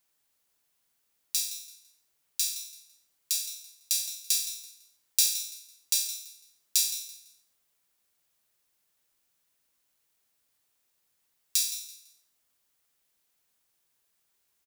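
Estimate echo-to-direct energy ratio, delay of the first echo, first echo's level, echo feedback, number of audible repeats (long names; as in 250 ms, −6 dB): −12.5 dB, 167 ms, −13.0 dB, 28%, 2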